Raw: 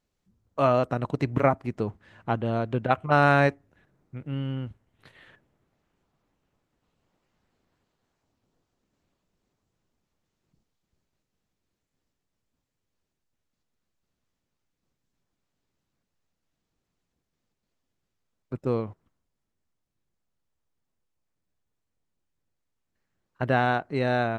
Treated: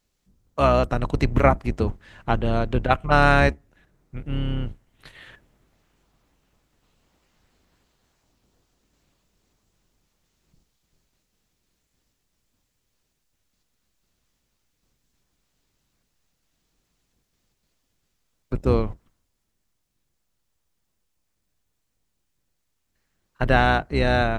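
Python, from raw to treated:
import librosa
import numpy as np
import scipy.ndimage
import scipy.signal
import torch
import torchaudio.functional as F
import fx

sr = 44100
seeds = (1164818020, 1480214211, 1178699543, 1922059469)

p1 = fx.octave_divider(x, sr, octaves=2, level_db=2.0)
p2 = fx.rider(p1, sr, range_db=10, speed_s=2.0)
p3 = p1 + F.gain(torch.from_numpy(p2), 0.0).numpy()
p4 = fx.high_shelf(p3, sr, hz=2200.0, db=8.0)
y = F.gain(torch.from_numpy(p4), -3.5).numpy()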